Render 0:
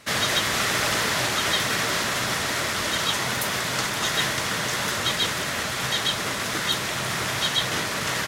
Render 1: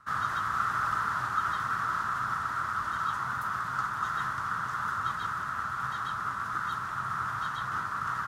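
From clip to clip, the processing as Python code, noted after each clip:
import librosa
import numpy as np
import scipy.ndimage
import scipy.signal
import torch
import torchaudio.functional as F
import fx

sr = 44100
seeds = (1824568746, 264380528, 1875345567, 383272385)

y = fx.curve_eq(x, sr, hz=(110.0, 570.0, 1300.0, 2200.0), db=(0, -16, 13, -16))
y = F.gain(torch.from_numpy(y), -8.0).numpy()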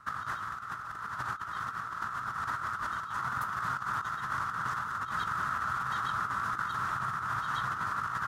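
y = fx.over_compress(x, sr, threshold_db=-34.0, ratio=-0.5)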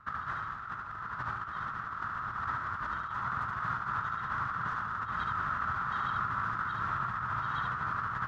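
y = scipy.signal.sosfilt(scipy.signal.butter(2, 3200.0, 'lowpass', fs=sr, output='sos'), x)
y = fx.low_shelf(y, sr, hz=110.0, db=7.5)
y = y + 10.0 ** (-4.0 / 20.0) * np.pad(y, (int(73 * sr / 1000.0), 0))[:len(y)]
y = F.gain(torch.from_numpy(y), -2.0).numpy()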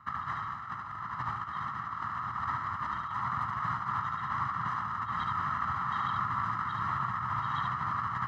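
y = scipy.signal.sosfilt(scipy.signal.butter(2, 92.0, 'highpass', fs=sr, output='sos'), x)
y = y + 0.69 * np.pad(y, (int(1.0 * sr / 1000.0), 0))[:len(y)]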